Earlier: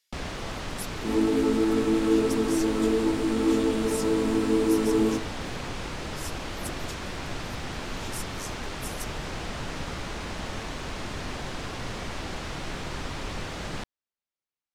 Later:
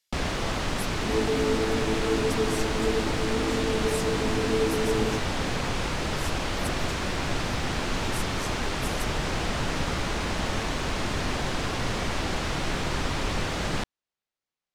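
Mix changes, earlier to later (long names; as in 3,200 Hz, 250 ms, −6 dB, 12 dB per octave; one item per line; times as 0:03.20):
first sound +6.0 dB
reverb: off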